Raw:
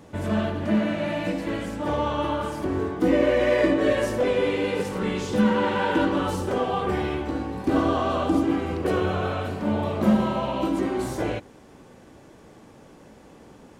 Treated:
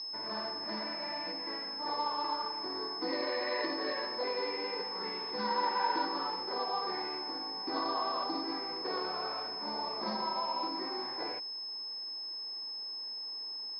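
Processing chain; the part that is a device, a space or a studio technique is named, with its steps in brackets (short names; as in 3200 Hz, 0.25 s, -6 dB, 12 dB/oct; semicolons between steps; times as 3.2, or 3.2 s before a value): toy sound module (decimation joined by straight lines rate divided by 6×; pulse-width modulation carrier 5200 Hz; speaker cabinet 570–4900 Hz, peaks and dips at 590 Hz -9 dB, 960 Hz +6 dB, 1400 Hz -6 dB, 2000 Hz +3 dB, 3000 Hz -7 dB, 4300 Hz +9 dB); gain -6 dB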